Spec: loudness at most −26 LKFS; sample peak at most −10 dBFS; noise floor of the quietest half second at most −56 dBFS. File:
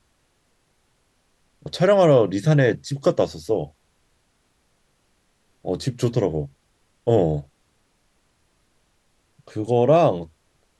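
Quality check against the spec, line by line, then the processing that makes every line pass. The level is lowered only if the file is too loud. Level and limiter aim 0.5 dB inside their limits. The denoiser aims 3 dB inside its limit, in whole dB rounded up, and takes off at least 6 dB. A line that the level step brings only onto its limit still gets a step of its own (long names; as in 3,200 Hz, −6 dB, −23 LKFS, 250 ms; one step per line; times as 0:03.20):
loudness −20.5 LKFS: out of spec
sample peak −5.0 dBFS: out of spec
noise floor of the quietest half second −66 dBFS: in spec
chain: level −6 dB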